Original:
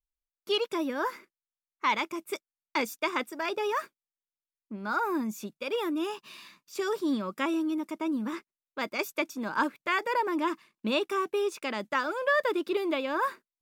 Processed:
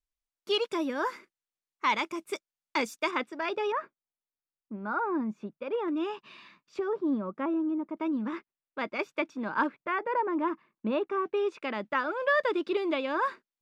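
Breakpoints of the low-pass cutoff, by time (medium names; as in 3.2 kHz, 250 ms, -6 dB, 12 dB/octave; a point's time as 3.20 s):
8.9 kHz
from 3.11 s 3.8 kHz
from 3.72 s 1.5 kHz
from 5.88 s 2.9 kHz
from 6.79 s 1.1 kHz
from 7.97 s 2.8 kHz
from 9.75 s 1.5 kHz
from 11.26 s 2.8 kHz
from 12.20 s 4.8 kHz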